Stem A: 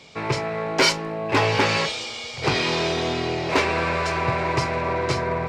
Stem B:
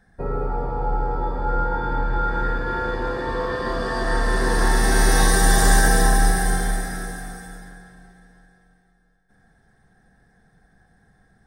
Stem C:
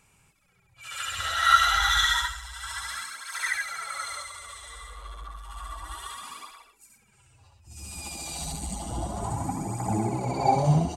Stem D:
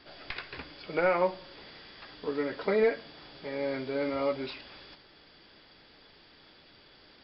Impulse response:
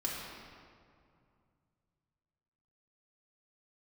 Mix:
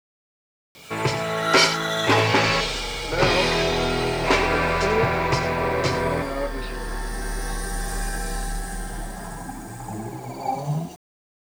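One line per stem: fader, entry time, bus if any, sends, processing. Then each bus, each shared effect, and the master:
+1.0 dB, 0.75 s, no send, echo send −11 dB, no processing
−3.5 dB, 2.30 s, no send, no echo send, notch filter 3,600 Hz, Q 14; downward compressor 1.5 to 1, threshold −37 dBFS, peak gain reduction 9.5 dB
−0.5 dB, 0.00 s, no send, no echo send, high-pass filter 100 Hz 24 dB per octave; flanger 0.2 Hz, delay 1.7 ms, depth 9.9 ms, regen −58%
+1.0 dB, 2.15 s, no send, no echo send, no processing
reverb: not used
echo: single-tap delay 90 ms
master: bit-depth reduction 8 bits, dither none

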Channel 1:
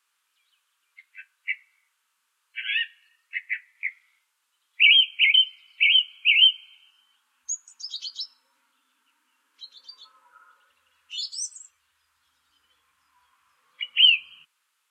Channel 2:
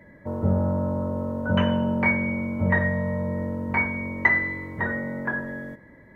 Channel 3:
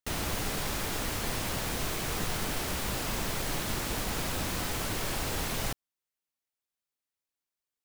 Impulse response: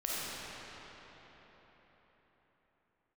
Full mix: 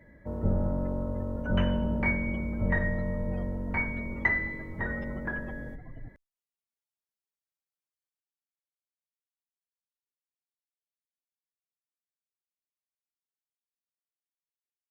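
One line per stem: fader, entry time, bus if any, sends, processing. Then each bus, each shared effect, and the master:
muted
−6.5 dB, 0.00 s, no send, sub-octave generator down 2 octaves, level 0 dB; parametric band 1,000 Hz −4 dB 0.35 octaves
−4.5 dB, 0.35 s, no send, gate on every frequency bin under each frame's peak −10 dB strong; barber-pole flanger 3.4 ms −0.4 Hz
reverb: not used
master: no processing

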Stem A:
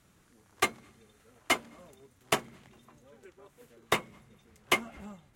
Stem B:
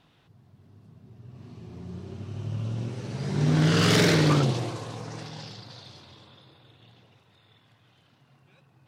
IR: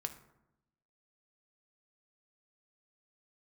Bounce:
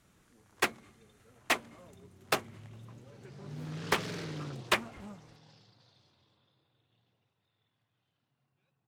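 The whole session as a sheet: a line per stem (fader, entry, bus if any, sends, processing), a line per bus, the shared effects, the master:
−1.5 dB, 0.00 s, no send, no processing
−19.5 dB, 0.10 s, no send, no processing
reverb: not used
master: highs frequency-modulated by the lows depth 0.56 ms

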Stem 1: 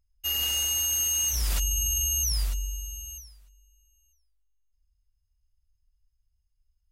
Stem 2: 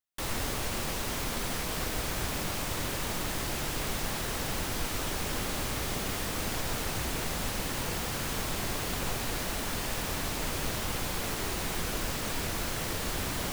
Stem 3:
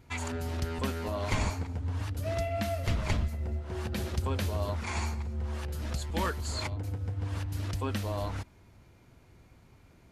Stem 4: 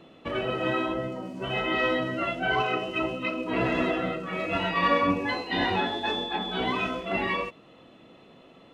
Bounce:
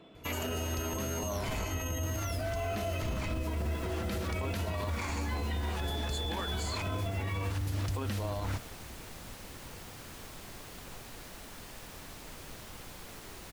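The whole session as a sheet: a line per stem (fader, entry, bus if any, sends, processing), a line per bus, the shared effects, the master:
−11.5 dB, 0.00 s, no send, gain on one half-wave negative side −3 dB
−14.0 dB, 1.85 s, no send, no processing
+2.5 dB, 0.15 s, no send, brickwall limiter −24.5 dBFS, peak gain reduction 9 dB
−7.0 dB, 0.00 s, no send, EQ curve with evenly spaced ripples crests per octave 1.7, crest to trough 7 dB; compressor whose output falls as the input rises −30 dBFS, ratio −1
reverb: not used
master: brickwall limiter −26 dBFS, peak gain reduction 8 dB

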